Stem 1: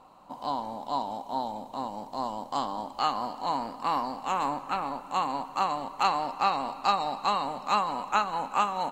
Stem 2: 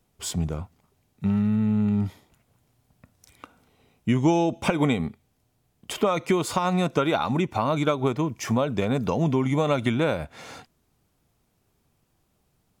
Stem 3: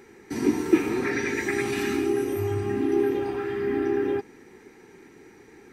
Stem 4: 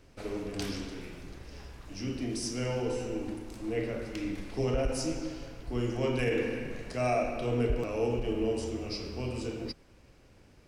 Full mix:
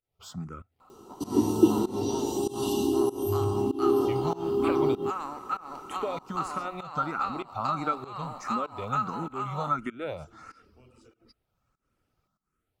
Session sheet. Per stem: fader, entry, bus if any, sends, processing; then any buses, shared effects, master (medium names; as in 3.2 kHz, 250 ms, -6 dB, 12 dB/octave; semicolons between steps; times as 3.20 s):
-7.5 dB, 0.80 s, no send, compression, threshold -27 dBFS, peak gain reduction 8.5 dB
-8.5 dB, 0.00 s, no send, treble shelf 6.6 kHz -11.5 dB; barber-pole phaser +1.5 Hz
0.0 dB, 0.90 s, no send, FFT band-reject 1.1–2.7 kHz
-18.0 dB, 1.60 s, no send, reverb removal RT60 0.9 s; compression, threshold -35 dBFS, peak gain reduction 10 dB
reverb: none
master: treble shelf 11 kHz +7.5 dB; volume shaper 97 bpm, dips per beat 1, -21 dB, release 233 ms; small resonant body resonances 1.3 kHz, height 18 dB, ringing for 35 ms